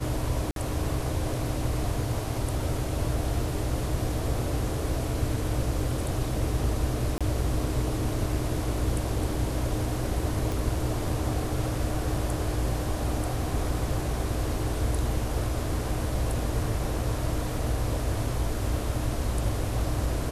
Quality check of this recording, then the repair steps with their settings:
0.51–0.56 gap 52 ms
7.18–7.21 gap 26 ms
10.52 pop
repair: de-click; interpolate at 0.51, 52 ms; interpolate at 7.18, 26 ms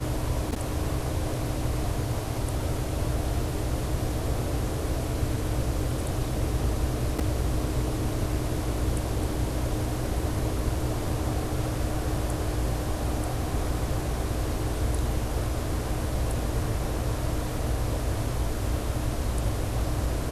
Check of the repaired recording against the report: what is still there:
none

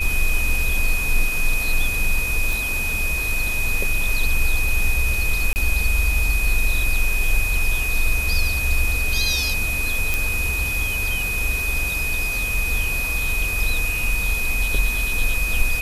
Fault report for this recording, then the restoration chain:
tone 2500 Hz -23 dBFS
2.53 pop
5.53–5.56 gap 29 ms
10.14 pop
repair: de-click; notch 2500 Hz, Q 30; interpolate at 5.53, 29 ms

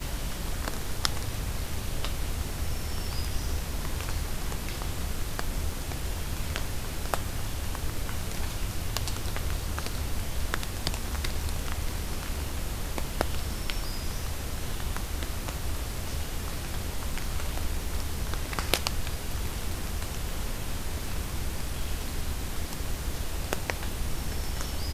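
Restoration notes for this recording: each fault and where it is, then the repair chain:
crackle 33/s -38 dBFS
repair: de-click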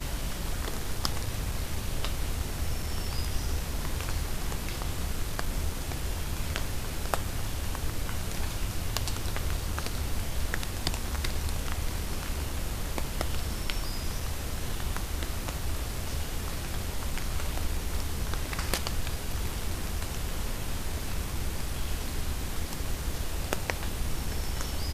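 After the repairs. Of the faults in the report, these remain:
none

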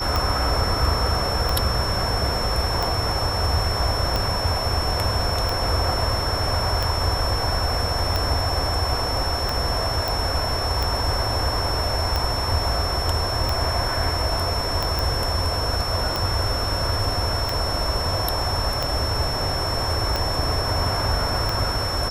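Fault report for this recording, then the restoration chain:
tick 45 rpm
tone 5400 Hz -27 dBFS
10.08 pop
14.99 pop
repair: de-click; notch 5400 Hz, Q 30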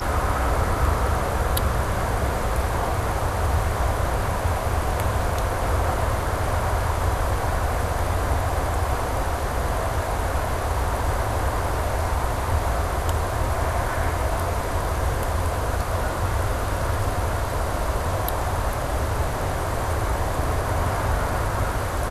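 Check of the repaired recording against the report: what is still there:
none

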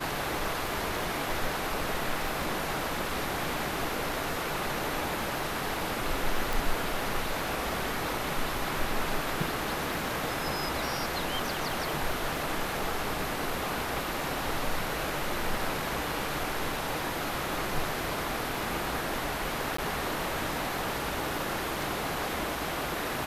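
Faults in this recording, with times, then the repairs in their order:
crackle 21/s -36 dBFS
6.53 pop
19.77–19.78 gap 14 ms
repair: de-click; interpolate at 19.77, 14 ms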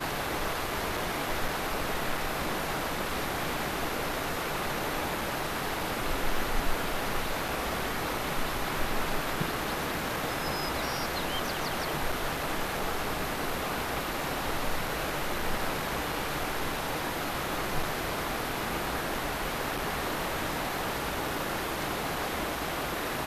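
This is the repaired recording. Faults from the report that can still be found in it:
none

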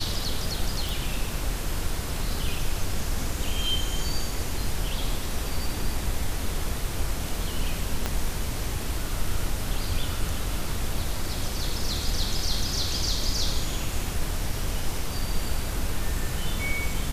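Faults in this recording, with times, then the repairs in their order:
0.89 pop
8.06 pop -11 dBFS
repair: de-click

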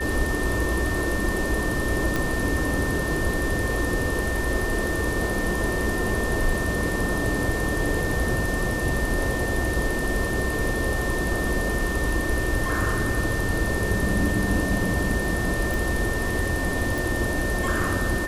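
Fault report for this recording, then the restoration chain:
tone 1800 Hz -29 dBFS
2.16 pop
15.74 pop
16.98 pop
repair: de-click; notch 1800 Hz, Q 30

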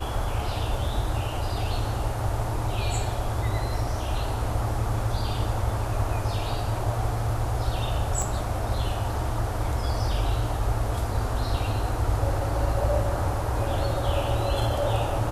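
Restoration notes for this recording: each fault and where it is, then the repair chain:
8.22 pop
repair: de-click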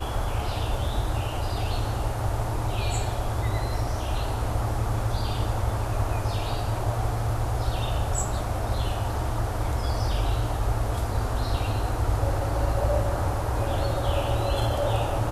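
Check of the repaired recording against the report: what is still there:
8.22 pop

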